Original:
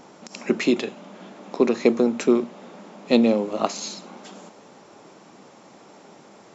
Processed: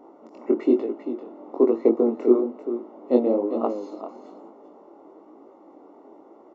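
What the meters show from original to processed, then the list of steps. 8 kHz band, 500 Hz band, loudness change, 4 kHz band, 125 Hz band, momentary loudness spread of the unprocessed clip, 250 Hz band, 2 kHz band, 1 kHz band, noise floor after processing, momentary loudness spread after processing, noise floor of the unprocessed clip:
can't be measured, +1.5 dB, −1.0 dB, below −20 dB, below −10 dB, 19 LU, −1.0 dB, below −15 dB, −3.0 dB, −51 dBFS, 17 LU, −50 dBFS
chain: single-tap delay 393 ms −10.5 dB
chorus effect 1.1 Hz, delay 17.5 ms, depth 6.9 ms
Savitzky-Golay smoothing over 65 samples
low shelf with overshoot 220 Hz −11 dB, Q 3

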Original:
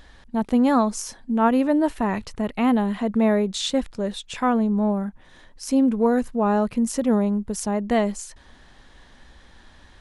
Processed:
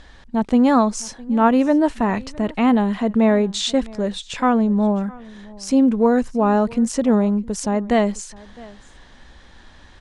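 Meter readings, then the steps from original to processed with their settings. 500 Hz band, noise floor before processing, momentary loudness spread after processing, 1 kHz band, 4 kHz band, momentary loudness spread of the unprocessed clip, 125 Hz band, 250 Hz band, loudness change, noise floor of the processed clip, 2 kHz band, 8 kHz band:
+3.5 dB, −51 dBFS, 10 LU, +3.5 dB, +3.5 dB, 10 LU, can't be measured, +3.5 dB, +3.5 dB, −46 dBFS, +3.5 dB, +2.0 dB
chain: low-pass filter 8,800 Hz 24 dB per octave
on a send: single-tap delay 660 ms −22.5 dB
on the sum: level +3.5 dB

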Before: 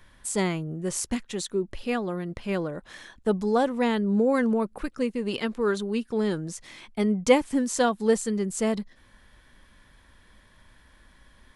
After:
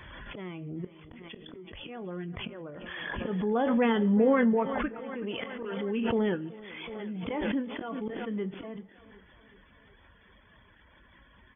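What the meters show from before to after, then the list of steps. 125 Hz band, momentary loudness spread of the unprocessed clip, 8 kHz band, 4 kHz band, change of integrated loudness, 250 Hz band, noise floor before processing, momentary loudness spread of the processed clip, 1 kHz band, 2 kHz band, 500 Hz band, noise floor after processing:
−4.0 dB, 11 LU, below −40 dB, −5.5 dB, −4.0 dB, −3.5 dB, −58 dBFS, 20 LU, −4.5 dB, −3.0 dB, −5.5 dB, −59 dBFS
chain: spectral magnitudes quantised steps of 15 dB
high-pass filter 51 Hz 12 dB per octave
volume swells 596 ms
reverb reduction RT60 0.61 s
linear-phase brick-wall low-pass 3,500 Hz
double-tracking delay 22 ms −13 dB
feedback echo with a high-pass in the loop 375 ms, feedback 70%, high-pass 190 Hz, level −18.5 dB
four-comb reverb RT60 0.58 s, combs from 27 ms, DRR 18.5 dB
background raised ahead of every attack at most 23 dB per second

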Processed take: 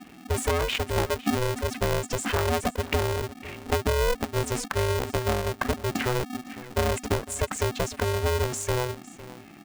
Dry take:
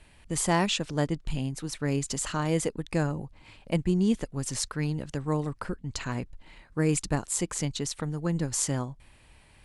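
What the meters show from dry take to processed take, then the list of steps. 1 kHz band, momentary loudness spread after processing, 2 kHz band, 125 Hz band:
+6.0 dB, 7 LU, +6.5 dB, +1.0 dB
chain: expanding power law on the bin magnitudes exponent 1.7
downward compressor 6 to 1, threshold −30 dBFS, peak gain reduction 10.5 dB
high shelf with overshoot 3,100 Hz −7.5 dB, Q 3
on a send: single-tap delay 506 ms −18 dB
on the sum: ring modulator with a square carrier 250 Hz
level +8.5 dB

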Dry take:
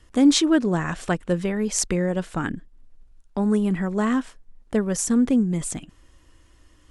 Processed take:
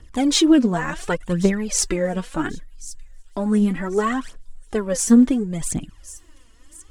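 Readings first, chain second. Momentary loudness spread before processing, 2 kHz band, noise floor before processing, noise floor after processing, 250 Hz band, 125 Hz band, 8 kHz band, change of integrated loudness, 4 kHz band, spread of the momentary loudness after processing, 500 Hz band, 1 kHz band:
12 LU, +2.0 dB, −56 dBFS, −49 dBFS, +2.5 dB, 0.0 dB, +3.0 dB, +2.5 dB, +3.0 dB, 17 LU, +2.5 dB, +3.0 dB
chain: phase shifter 0.69 Hz, delay 4.6 ms, feedback 69%
delay with a high-pass on its return 1,089 ms, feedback 35%, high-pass 5,500 Hz, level −14.5 dB

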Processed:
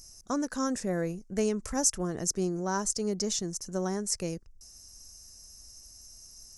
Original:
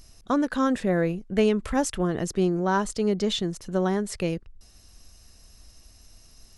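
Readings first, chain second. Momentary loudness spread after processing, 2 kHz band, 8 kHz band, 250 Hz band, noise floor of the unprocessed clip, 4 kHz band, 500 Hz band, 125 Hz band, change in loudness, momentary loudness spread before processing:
21 LU, −8.5 dB, +7.5 dB, −7.0 dB, −54 dBFS, −3.5 dB, −7.0 dB, −7.0 dB, −5.0 dB, 6 LU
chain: high shelf with overshoot 4,500 Hz +9.5 dB, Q 3
level −7 dB

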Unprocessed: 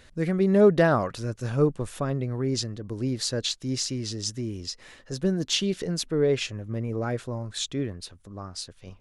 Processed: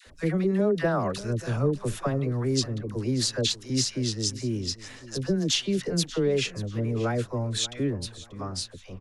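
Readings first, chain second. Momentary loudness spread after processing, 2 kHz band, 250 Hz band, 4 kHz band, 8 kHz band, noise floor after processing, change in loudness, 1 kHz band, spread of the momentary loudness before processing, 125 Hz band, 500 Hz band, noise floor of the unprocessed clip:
9 LU, −1.5 dB, −0.5 dB, +1.5 dB, +2.0 dB, −48 dBFS, −1.0 dB, −2.0 dB, 15 LU, +1.0 dB, −3.0 dB, −54 dBFS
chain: downward compressor 6 to 1, threshold −24 dBFS, peak gain reduction 11 dB
all-pass dispersion lows, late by 67 ms, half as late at 740 Hz
on a send: repeating echo 586 ms, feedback 27%, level −17.5 dB
on the sum: level +3 dB

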